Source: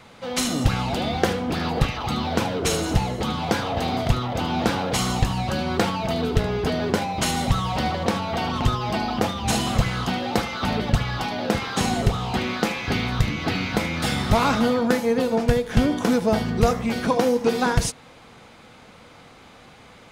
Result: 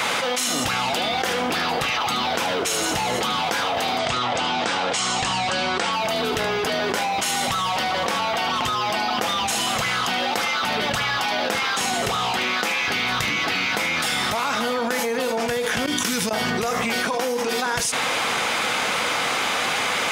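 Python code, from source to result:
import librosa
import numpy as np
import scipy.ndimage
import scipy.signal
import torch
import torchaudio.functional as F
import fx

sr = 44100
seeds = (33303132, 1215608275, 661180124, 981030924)

y = fx.ellip_lowpass(x, sr, hz=8600.0, order=4, stop_db=60, at=(3.98, 5.93))
y = fx.tone_stack(y, sr, knobs='6-0-2', at=(15.86, 16.31))
y = fx.highpass(y, sr, hz=1300.0, slope=6)
y = fx.peak_eq(y, sr, hz=4200.0, db=-4.0, octaves=0.33)
y = fx.env_flatten(y, sr, amount_pct=100)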